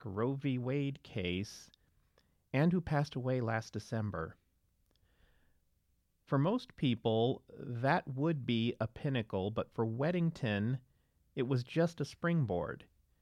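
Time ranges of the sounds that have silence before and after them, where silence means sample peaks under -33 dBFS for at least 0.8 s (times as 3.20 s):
2.54–4.25 s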